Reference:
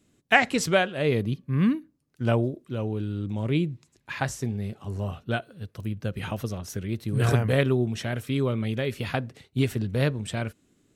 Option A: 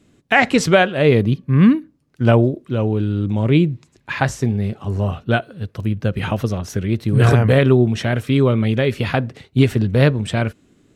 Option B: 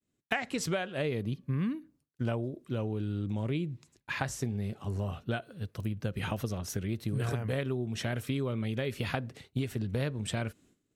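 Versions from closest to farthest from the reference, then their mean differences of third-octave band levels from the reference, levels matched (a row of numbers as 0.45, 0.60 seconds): A, B; 1.5, 3.5 decibels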